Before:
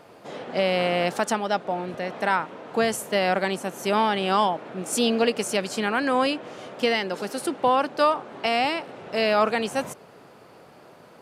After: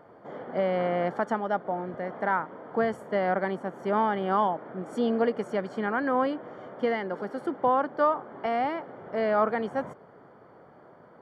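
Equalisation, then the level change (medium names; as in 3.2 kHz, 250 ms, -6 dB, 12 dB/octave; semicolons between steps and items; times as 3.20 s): Savitzky-Golay filter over 41 samples; -3.0 dB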